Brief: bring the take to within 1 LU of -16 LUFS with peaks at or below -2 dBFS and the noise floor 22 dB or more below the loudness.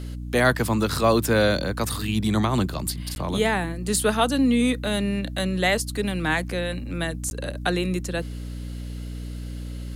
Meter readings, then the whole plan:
dropouts 2; longest dropout 11 ms; hum 60 Hz; highest harmonic 300 Hz; hum level -30 dBFS; loudness -24.0 LUFS; peak level -7.0 dBFS; loudness target -16.0 LUFS
-> interpolate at 3.15/7.30 s, 11 ms; hum notches 60/120/180/240/300 Hz; trim +8 dB; peak limiter -2 dBFS

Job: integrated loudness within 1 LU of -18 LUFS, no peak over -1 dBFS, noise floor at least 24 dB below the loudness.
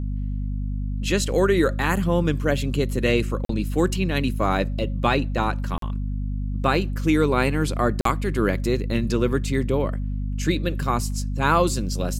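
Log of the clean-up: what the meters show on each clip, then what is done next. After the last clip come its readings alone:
dropouts 3; longest dropout 43 ms; hum 50 Hz; highest harmonic 250 Hz; hum level -24 dBFS; loudness -23.5 LUFS; peak level -5.5 dBFS; loudness target -18.0 LUFS
-> interpolate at 3.45/5.78/8.01 s, 43 ms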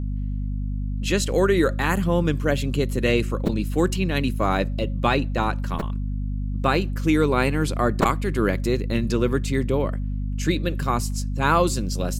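dropouts 0; hum 50 Hz; highest harmonic 250 Hz; hum level -24 dBFS
-> hum notches 50/100/150/200/250 Hz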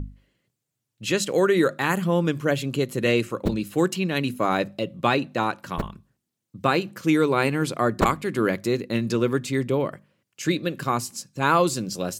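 hum not found; loudness -24.0 LUFS; peak level -4.5 dBFS; loudness target -18.0 LUFS
-> trim +6 dB; peak limiter -1 dBFS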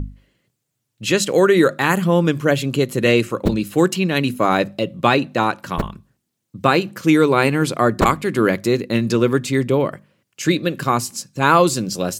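loudness -18.0 LUFS; peak level -1.0 dBFS; noise floor -76 dBFS

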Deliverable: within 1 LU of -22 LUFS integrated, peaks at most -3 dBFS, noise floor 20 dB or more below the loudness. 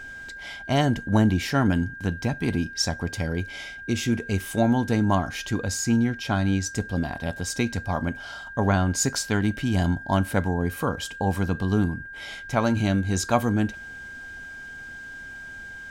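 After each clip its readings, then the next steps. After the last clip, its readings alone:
steady tone 1.6 kHz; tone level -37 dBFS; loudness -25.0 LUFS; peak level -7.0 dBFS; loudness target -22.0 LUFS
-> band-stop 1.6 kHz, Q 30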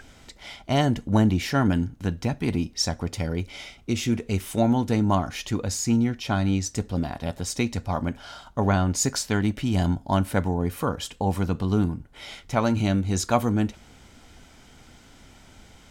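steady tone not found; loudness -25.0 LUFS; peak level -7.0 dBFS; loudness target -22.0 LUFS
-> trim +3 dB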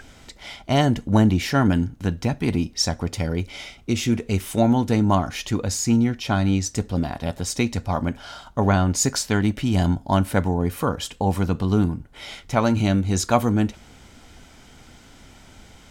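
loudness -22.0 LUFS; peak level -4.0 dBFS; noise floor -49 dBFS

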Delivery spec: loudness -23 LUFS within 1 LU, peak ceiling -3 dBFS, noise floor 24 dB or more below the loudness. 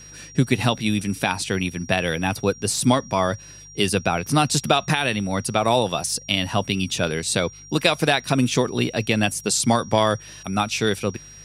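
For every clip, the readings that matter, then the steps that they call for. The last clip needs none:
hum 50 Hz; highest harmonic 150 Hz; hum level -45 dBFS; steady tone 5.7 kHz; tone level -42 dBFS; loudness -22.0 LUFS; peak level -3.0 dBFS; loudness target -23.0 LUFS
-> de-hum 50 Hz, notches 3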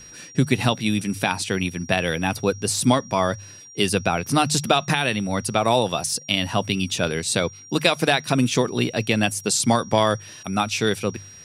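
hum not found; steady tone 5.7 kHz; tone level -42 dBFS
-> band-stop 5.7 kHz, Q 30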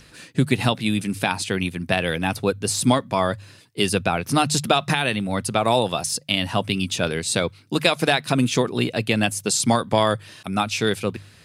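steady tone not found; loudness -22.0 LUFS; peak level -3.0 dBFS; loudness target -23.0 LUFS
-> trim -1 dB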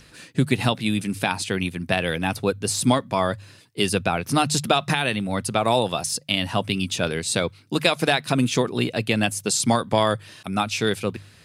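loudness -23.0 LUFS; peak level -4.0 dBFS; noise floor -51 dBFS

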